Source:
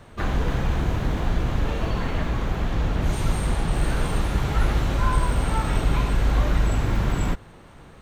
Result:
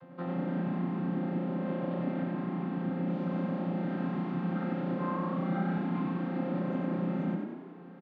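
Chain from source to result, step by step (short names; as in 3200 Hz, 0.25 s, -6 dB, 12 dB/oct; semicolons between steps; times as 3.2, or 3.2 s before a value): chord vocoder bare fifth, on F3; 5.36–5.78 comb 5.2 ms; in parallel at +2 dB: compressor, threshold -36 dBFS, peak gain reduction 13 dB; on the sum: air absorption 290 m; frequency-shifting echo 94 ms, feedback 58%, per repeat +31 Hz, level -4.5 dB; gain -8 dB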